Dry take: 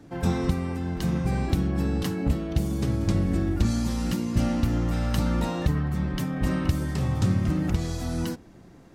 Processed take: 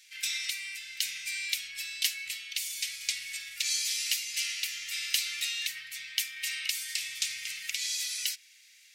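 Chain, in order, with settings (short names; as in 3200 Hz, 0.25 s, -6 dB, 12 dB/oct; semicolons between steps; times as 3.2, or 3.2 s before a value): elliptic high-pass 2200 Hz, stop band 60 dB; in parallel at -10.5 dB: hard clip -32.5 dBFS, distortion -14 dB; on the sum: gain +9 dB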